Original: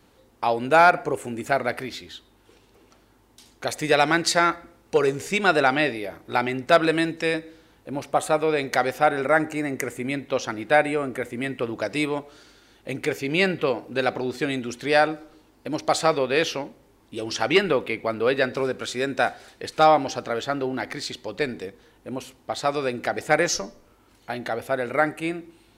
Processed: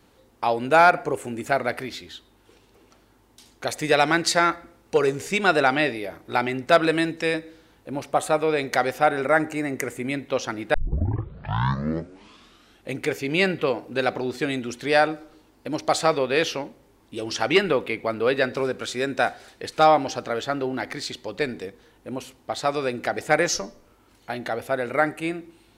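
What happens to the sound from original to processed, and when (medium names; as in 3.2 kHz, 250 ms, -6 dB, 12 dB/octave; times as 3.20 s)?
10.74 s: tape start 2.16 s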